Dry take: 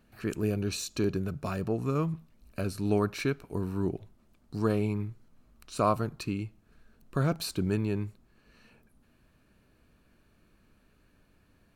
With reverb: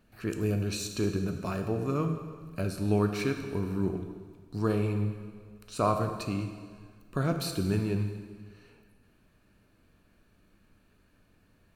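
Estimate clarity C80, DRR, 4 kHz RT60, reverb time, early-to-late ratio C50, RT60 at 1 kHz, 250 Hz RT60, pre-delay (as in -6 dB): 8.5 dB, 5.0 dB, 1.6 s, 1.7 s, 7.0 dB, 1.7 s, 1.7 s, 5 ms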